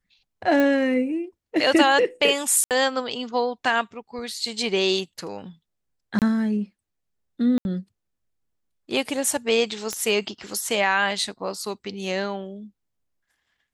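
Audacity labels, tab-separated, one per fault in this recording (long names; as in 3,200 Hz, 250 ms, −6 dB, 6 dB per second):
0.600000	0.600000	click −11 dBFS
2.640000	2.710000	drop-out 68 ms
6.190000	6.220000	drop-out 28 ms
7.580000	7.650000	drop-out 71 ms
9.930000	9.930000	click −12 dBFS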